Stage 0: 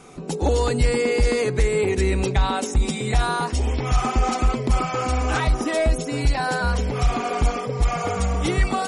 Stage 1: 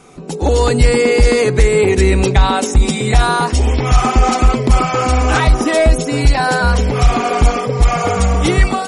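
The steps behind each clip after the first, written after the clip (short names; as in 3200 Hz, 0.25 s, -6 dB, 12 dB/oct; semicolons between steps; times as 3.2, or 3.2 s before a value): AGC gain up to 8 dB; gain +2 dB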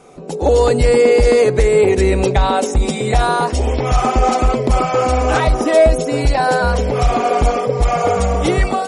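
bell 570 Hz +9 dB 1.1 oct; gain -4.5 dB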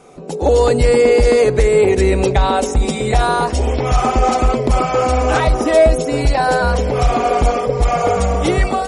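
darkening echo 0.234 s, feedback 78%, low-pass 2000 Hz, level -23 dB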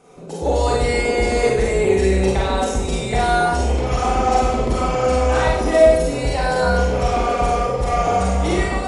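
Schroeder reverb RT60 0.74 s, combs from 32 ms, DRR -4 dB; gain -8 dB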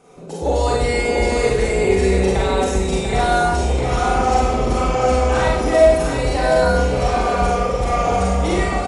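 echo 0.693 s -7 dB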